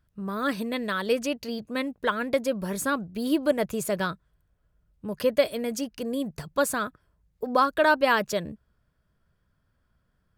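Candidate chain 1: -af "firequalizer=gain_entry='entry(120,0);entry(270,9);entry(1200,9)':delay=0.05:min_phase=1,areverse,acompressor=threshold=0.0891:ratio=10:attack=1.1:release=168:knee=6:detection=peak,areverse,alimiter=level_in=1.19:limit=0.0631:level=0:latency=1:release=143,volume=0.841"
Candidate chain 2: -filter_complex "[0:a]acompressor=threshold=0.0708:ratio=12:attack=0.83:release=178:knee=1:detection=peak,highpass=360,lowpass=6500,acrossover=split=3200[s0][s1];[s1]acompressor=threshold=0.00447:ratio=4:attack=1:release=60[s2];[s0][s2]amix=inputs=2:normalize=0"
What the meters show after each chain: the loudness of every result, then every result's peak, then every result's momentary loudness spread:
-34.5 LUFS, -34.5 LUFS; -25.5 dBFS, -18.5 dBFS; 5 LU, 6 LU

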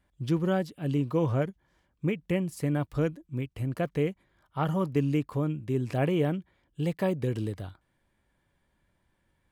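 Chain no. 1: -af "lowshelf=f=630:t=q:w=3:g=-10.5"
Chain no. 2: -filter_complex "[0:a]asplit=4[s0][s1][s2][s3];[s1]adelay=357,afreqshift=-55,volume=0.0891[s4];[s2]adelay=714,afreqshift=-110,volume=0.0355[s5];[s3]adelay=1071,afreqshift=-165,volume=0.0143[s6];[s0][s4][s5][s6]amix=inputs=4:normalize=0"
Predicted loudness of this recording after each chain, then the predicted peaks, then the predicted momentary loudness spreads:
-37.0 LUFS, -30.0 LUFS; -14.0 dBFS, -15.0 dBFS; 11 LU, 9 LU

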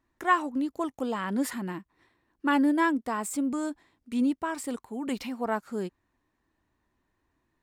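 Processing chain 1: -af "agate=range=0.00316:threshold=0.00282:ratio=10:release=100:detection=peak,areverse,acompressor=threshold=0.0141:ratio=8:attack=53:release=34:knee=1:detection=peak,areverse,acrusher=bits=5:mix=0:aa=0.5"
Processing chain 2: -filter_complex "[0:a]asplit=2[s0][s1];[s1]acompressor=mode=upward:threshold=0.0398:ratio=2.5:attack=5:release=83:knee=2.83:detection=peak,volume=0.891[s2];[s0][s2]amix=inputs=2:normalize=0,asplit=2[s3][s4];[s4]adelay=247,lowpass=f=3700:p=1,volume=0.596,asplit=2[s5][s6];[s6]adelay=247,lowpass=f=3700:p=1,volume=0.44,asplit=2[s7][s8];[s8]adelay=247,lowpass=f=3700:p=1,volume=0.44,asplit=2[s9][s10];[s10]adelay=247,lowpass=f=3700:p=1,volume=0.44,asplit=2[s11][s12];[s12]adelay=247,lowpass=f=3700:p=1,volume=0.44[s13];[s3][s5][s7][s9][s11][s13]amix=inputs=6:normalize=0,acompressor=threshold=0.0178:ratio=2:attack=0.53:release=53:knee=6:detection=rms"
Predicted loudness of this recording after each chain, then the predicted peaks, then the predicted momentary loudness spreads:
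-35.0 LUFS, -33.0 LUFS; -20.5 dBFS, -20.0 dBFS; 5 LU, 17 LU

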